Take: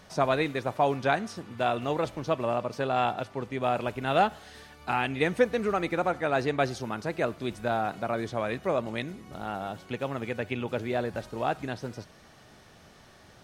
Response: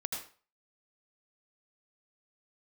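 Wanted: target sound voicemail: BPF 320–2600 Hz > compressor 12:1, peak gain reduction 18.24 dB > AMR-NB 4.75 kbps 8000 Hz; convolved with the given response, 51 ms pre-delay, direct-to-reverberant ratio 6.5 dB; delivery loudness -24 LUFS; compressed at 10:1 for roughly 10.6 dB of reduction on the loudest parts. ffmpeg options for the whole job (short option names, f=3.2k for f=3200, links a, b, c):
-filter_complex "[0:a]acompressor=threshold=-28dB:ratio=10,asplit=2[a][b];[1:a]atrim=start_sample=2205,adelay=51[c];[b][c]afir=irnorm=-1:irlink=0,volume=-8.5dB[d];[a][d]amix=inputs=2:normalize=0,highpass=320,lowpass=2.6k,acompressor=threshold=-45dB:ratio=12,volume=28dB" -ar 8000 -c:a libopencore_amrnb -b:a 4750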